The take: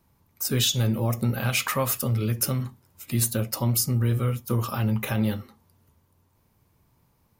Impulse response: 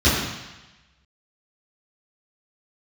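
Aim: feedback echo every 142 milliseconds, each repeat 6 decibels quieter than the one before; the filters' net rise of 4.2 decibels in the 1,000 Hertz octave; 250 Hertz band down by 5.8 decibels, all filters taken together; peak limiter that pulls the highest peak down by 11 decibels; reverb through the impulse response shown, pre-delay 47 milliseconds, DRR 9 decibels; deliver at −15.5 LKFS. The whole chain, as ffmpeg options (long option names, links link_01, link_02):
-filter_complex "[0:a]equalizer=frequency=250:width_type=o:gain=-7.5,equalizer=frequency=1000:width_type=o:gain=5.5,alimiter=limit=-22dB:level=0:latency=1,aecho=1:1:142|284|426|568|710|852:0.501|0.251|0.125|0.0626|0.0313|0.0157,asplit=2[link_01][link_02];[1:a]atrim=start_sample=2205,adelay=47[link_03];[link_02][link_03]afir=irnorm=-1:irlink=0,volume=-29.5dB[link_04];[link_01][link_04]amix=inputs=2:normalize=0,volume=13dB"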